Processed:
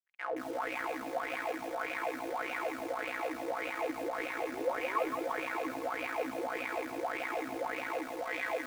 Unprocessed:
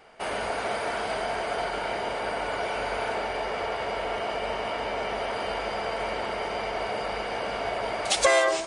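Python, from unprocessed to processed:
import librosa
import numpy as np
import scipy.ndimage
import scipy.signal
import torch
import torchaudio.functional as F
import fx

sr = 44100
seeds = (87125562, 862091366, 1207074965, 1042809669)

y = fx.peak_eq(x, sr, hz=3700.0, db=-10.0, octaves=1.0)
y = fx.fuzz(y, sr, gain_db=42.0, gate_db=-45.0)
y = fx.robotise(y, sr, hz=199.0)
y = y * np.sin(2.0 * np.pi * 70.0 * np.arange(len(y)) / sr)
y = fx.spec_paint(y, sr, seeds[0], shape='rise', start_s=4.53, length_s=0.74, low_hz=340.0, high_hz=2500.0, level_db=-20.0)
y = fx.wah_lfo(y, sr, hz=1.7, low_hz=230.0, high_hz=2500.0, q=7.9)
y = fx.echo_alternate(y, sr, ms=340, hz=840.0, feedback_pct=51, wet_db=-7.0)
y = fx.echo_crushed(y, sr, ms=169, feedback_pct=55, bits=7, wet_db=-5.0)
y = y * librosa.db_to_amplitude(-5.5)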